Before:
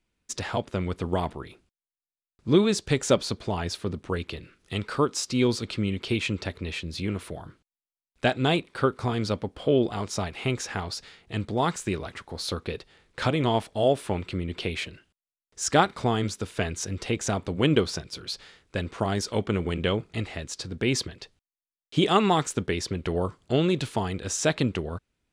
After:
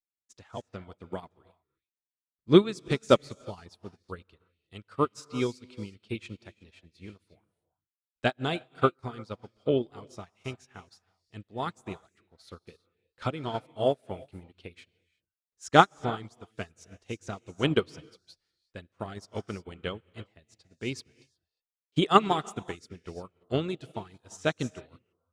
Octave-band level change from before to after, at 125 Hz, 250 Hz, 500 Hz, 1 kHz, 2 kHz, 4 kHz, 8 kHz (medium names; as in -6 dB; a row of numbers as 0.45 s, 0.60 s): -7.5 dB, -5.0 dB, -3.5 dB, -1.0 dB, -4.5 dB, -6.0 dB, -15.5 dB